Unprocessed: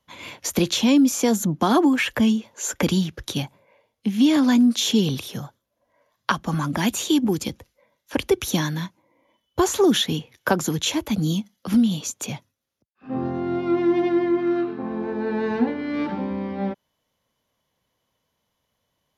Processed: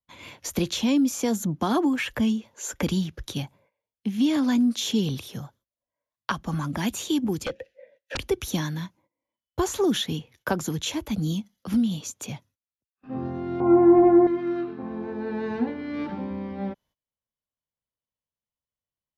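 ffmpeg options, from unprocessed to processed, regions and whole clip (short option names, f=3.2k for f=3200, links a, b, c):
-filter_complex "[0:a]asettb=1/sr,asplit=3[a][b][c];[a]atrim=end=7.454[d];[b]atrim=start=7.45:end=8.17,asetpts=PTS-STARTPTS,afade=t=in:d=0.004:c=qsin,afade=t=out:st=0.716:d=0.004:c=qsin,asplit=3[e][f][g];[e]bandpass=f=530:t=q:w=8,volume=0dB[h];[f]bandpass=f=1.84k:t=q:w=8,volume=-6dB[i];[g]bandpass=f=2.48k:t=q:w=8,volume=-9dB[j];[h][i][j]amix=inputs=3:normalize=0,aeval=exprs='0.119*sin(PI/2*7.94*val(0)/0.119)':c=same[k];[c]atrim=start=8.166[l];[d][k]acrossfade=d=0.004:c1=hsin:c2=qsin[m];[m][l]acrossfade=d=0.004:c1=qsin:c2=hsin,asettb=1/sr,asplit=3[n][o][p];[n]atrim=end=13.604[q];[o]atrim=start=13.6:end=14.27,asetpts=PTS-STARTPTS,afade=t=in:d=0.004:c=qsin,afade=t=out:st=0.666:d=0.004:c=qsin,acontrast=46,lowpass=f=1k:t=q:w=2.6,asplit=2[r][s];[s]adelay=14,volume=-3dB[t];[r][t]amix=inputs=2:normalize=0,atrim=end_sample=29547[u];[p]atrim=start=14.266[v];[q][u]acrossfade=d=0.004:c1=hsin:c2=qsin[w];[w][v]acrossfade=d=0.004:c1=qsin:c2=hsin,lowshelf=f=83:g=11.5,agate=range=-19dB:threshold=-52dB:ratio=16:detection=peak,volume=-6dB"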